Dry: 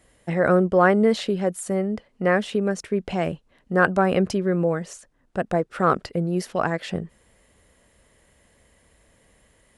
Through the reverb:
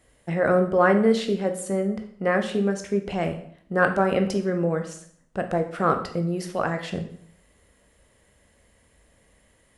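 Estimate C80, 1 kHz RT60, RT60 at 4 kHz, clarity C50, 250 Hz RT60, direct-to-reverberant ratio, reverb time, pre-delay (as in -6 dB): 13.5 dB, 0.60 s, 0.55 s, 10.5 dB, 0.65 s, 5.5 dB, 0.60 s, 12 ms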